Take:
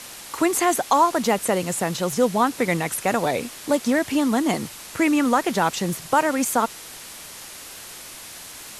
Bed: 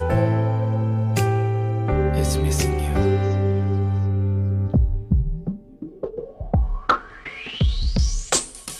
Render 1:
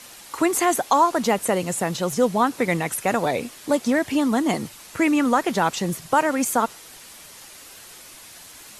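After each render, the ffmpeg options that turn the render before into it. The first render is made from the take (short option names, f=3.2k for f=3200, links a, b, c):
-af "afftdn=nr=6:nf=-40"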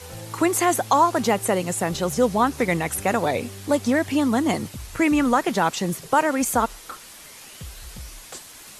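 -filter_complex "[1:a]volume=-19.5dB[a];[0:a][a]amix=inputs=2:normalize=0"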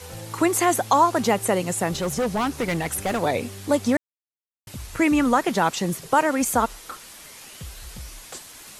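-filter_complex "[0:a]asettb=1/sr,asplit=3[a][b][c];[a]atrim=end=1.934[d];[b]atrim=start=1.93:end=3.21,asetpts=PTS-STARTPTS,afade=t=in:d=0.004:c=qsin,afade=t=out:st=1.276:d=0.004:c=qsin,asoftclip=type=hard:threshold=-20dB[e];[c]atrim=start=3.206[f];[d][e]acrossfade=d=0.004:c1=hsin:c2=qsin[g];[g][f]acrossfade=d=0.004:c1=qsin:c2=hsin,asplit=3[h][i][j];[h]atrim=end=3.97,asetpts=PTS-STARTPTS,afade=t=out:st=3.966:d=0.004:c=hsin[k];[i]atrim=start=3.97:end=4.67,asetpts=PTS-STARTPTS,volume=0[l];[j]atrim=start=4.67,asetpts=PTS-STARTPTS,afade=t=in:d=0.004:c=hsin[m];[k][l][m]concat=n=3:v=0:a=1"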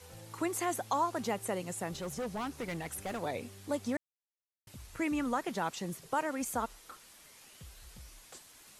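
-af "volume=-13.5dB"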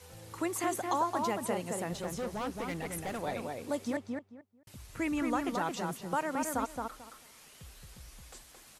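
-filter_complex "[0:a]asplit=2[a][b];[b]adelay=221,lowpass=f=2k:p=1,volume=-3dB,asplit=2[c][d];[d]adelay=221,lowpass=f=2k:p=1,volume=0.21,asplit=2[e][f];[f]adelay=221,lowpass=f=2k:p=1,volume=0.21[g];[a][c][e][g]amix=inputs=4:normalize=0"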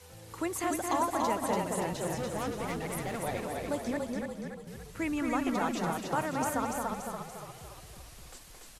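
-filter_complex "[0:a]asplit=8[a][b][c][d][e][f][g][h];[b]adelay=287,afreqshift=-35,volume=-3.5dB[i];[c]adelay=574,afreqshift=-70,volume=-9.3dB[j];[d]adelay=861,afreqshift=-105,volume=-15.2dB[k];[e]adelay=1148,afreqshift=-140,volume=-21dB[l];[f]adelay=1435,afreqshift=-175,volume=-26.9dB[m];[g]adelay=1722,afreqshift=-210,volume=-32.7dB[n];[h]adelay=2009,afreqshift=-245,volume=-38.6dB[o];[a][i][j][k][l][m][n][o]amix=inputs=8:normalize=0"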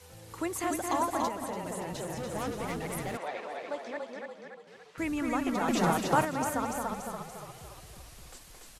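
-filter_complex "[0:a]asettb=1/sr,asplit=3[a][b][c];[a]atrim=end=1.284[d];[b]atrim=start=1.28:end=2.35,asetpts=PTS-STARTPTS,afade=t=in:d=0.004:c=qsin,afade=t=out:st=1.066:d=0.004:c=qsin,acompressor=threshold=-32dB:ratio=6:attack=3.2:release=140:knee=1:detection=peak[e];[c]atrim=start=2.346[f];[d][e]acrossfade=d=0.004:c1=hsin:c2=qsin[g];[g][f]acrossfade=d=0.004:c1=qsin:c2=hsin,asettb=1/sr,asplit=3[h][i][j];[h]atrim=end=3.174[k];[i]atrim=start=3.17:end=4.98,asetpts=PTS-STARTPTS,afade=t=in:d=0.004:c=qsin,afade=t=out:st=1.806:d=0.004:c=qsin,highpass=510,lowpass=3.9k[l];[j]atrim=start=4.976[m];[k][l]acrossfade=d=0.004:c1=hsin:c2=qsin[n];[n][m]acrossfade=d=0.004:c1=qsin:c2=hsin,asettb=1/sr,asplit=3[o][p][q];[o]atrim=end=5.684[r];[p]atrim=start=5.68:end=6.25,asetpts=PTS-STARTPTS,afade=t=in:d=0.004:c=qsin,afade=t=out:st=0.566:d=0.004:c=qsin,acontrast=49[s];[q]atrim=start=6.246[t];[r][s]acrossfade=d=0.004:c1=hsin:c2=qsin[u];[u][t]acrossfade=d=0.004:c1=qsin:c2=hsin"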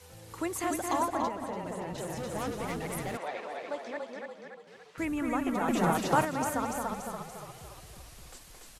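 -filter_complex "[0:a]asettb=1/sr,asplit=3[a][b][c];[a]atrim=end=1.084[d];[b]atrim=start=1.08:end=1.98,asetpts=PTS-STARTPTS,afade=t=in:d=0.004:c=qsin,afade=t=out:st=0.896:d=0.004:c=qsin,lowpass=f=3k:p=1[e];[c]atrim=start=1.976[f];[d][e]acrossfade=d=0.004:c1=hsin:c2=qsin[g];[g][f]acrossfade=d=0.004:c1=qsin:c2=hsin,asettb=1/sr,asplit=3[h][i][j];[h]atrim=end=5.054[k];[i]atrim=start=5.05:end=5.95,asetpts=PTS-STARTPTS,afade=t=in:d=0.004:c=qsin,afade=t=out:st=0.896:d=0.004:c=qsin,equalizer=f=4.8k:t=o:w=1:g=-8.5[l];[j]atrim=start=5.946[m];[k][l]acrossfade=d=0.004:c1=hsin:c2=qsin[n];[n][m]acrossfade=d=0.004:c1=qsin:c2=hsin"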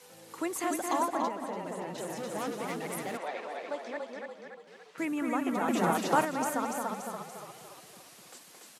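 -af "highpass=f=180:w=0.5412,highpass=f=180:w=1.3066"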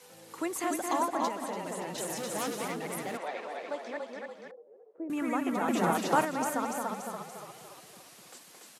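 -filter_complex "[0:a]asettb=1/sr,asplit=3[a][b][c];[a]atrim=end=1.224[d];[b]atrim=start=1.22:end=2.68,asetpts=PTS-STARTPTS,afade=t=in:d=0.004:c=qsin,afade=t=out:st=1.456:d=0.004:c=qsin,highshelf=f=2.8k:g=9[e];[c]atrim=start=2.676[f];[d][e]acrossfade=d=0.004:c1=hsin:c2=qsin[g];[g][f]acrossfade=d=0.004:c1=qsin:c2=hsin,asettb=1/sr,asplit=3[h][i][j];[h]atrim=end=4.514[k];[i]atrim=start=4.51:end=5.1,asetpts=PTS-STARTPTS,afade=t=in:d=0.004:c=qsin,afade=t=out:st=0.586:d=0.004:c=qsin,asuperpass=centerf=450:order=4:qfactor=1.6[l];[j]atrim=start=5.096[m];[k][l]acrossfade=d=0.004:c1=hsin:c2=qsin[n];[n][m]acrossfade=d=0.004:c1=qsin:c2=hsin"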